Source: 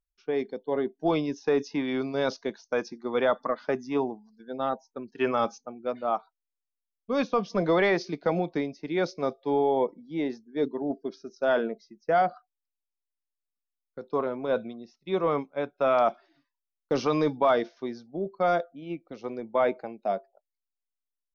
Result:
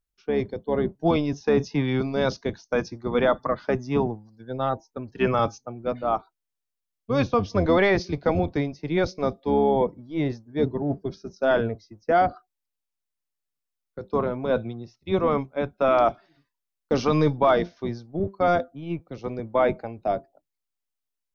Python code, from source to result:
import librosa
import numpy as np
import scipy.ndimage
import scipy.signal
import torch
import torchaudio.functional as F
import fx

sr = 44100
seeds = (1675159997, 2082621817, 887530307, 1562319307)

y = fx.octave_divider(x, sr, octaves=1, level_db=-1.0)
y = F.gain(torch.from_numpy(y), 3.0).numpy()